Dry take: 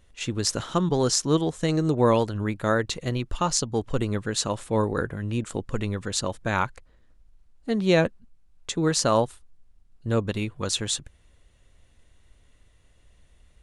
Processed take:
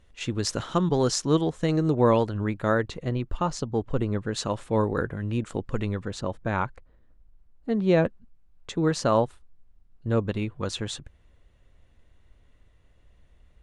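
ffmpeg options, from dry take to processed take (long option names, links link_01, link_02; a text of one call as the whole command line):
ffmpeg -i in.wav -af "asetnsamples=nb_out_samples=441:pad=0,asendcmd='1.47 lowpass f 2700;2.88 lowpass f 1300;4.33 lowpass f 3000;6 lowpass f 1200;8.05 lowpass f 2000',lowpass=frequency=4300:poles=1" out.wav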